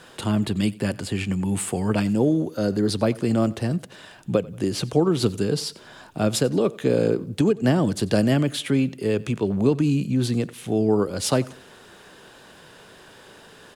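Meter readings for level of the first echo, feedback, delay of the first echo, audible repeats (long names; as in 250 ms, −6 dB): −22.0 dB, 39%, 92 ms, 2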